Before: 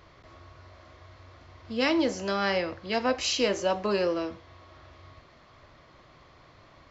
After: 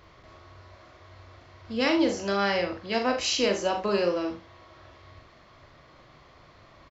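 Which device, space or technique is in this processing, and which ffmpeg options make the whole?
slapback doubling: -filter_complex "[0:a]asplit=3[a][b][c];[b]adelay=40,volume=-6dB[d];[c]adelay=73,volume=-12dB[e];[a][d][e]amix=inputs=3:normalize=0"

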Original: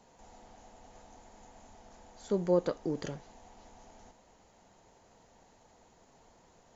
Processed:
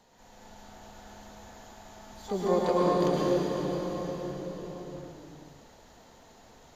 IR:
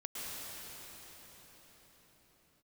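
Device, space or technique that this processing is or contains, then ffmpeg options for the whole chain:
shimmer-style reverb: -filter_complex "[0:a]asplit=3[a][b][c];[a]afade=t=out:st=1.34:d=0.02[d];[b]highpass=f=300:p=1,afade=t=in:st=1.34:d=0.02,afade=t=out:st=1.76:d=0.02[e];[c]afade=t=in:st=1.76:d=0.02[f];[d][e][f]amix=inputs=3:normalize=0,asplit=2[g][h];[h]asetrate=88200,aresample=44100,atempo=0.5,volume=-10dB[i];[g][i]amix=inputs=2:normalize=0[j];[1:a]atrim=start_sample=2205[k];[j][k]afir=irnorm=-1:irlink=0,equalizer=f=3.9k:w=1.6:g=6,volume=4dB"

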